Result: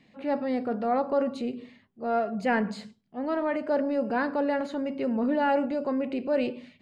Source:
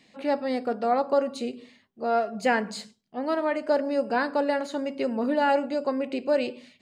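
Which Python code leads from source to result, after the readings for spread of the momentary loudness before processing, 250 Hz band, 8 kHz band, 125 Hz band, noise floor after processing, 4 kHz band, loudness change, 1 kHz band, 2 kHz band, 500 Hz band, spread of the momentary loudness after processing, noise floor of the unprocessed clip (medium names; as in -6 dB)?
10 LU, +1.5 dB, under -10 dB, no reading, -62 dBFS, -6.5 dB, -1.5 dB, -2.5 dB, -3.0 dB, -2.5 dB, 9 LU, -63 dBFS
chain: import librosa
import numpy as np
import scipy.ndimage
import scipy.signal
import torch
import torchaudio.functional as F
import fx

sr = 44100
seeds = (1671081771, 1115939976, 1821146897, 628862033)

y = fx.transient(x, sr, attack_db=-3, sustain_db=3)
y = fx.bass_treble(y, sr, bass_db=7, treble_db=-12)
y = y * 10.0 ** (-2.0 / 20.0)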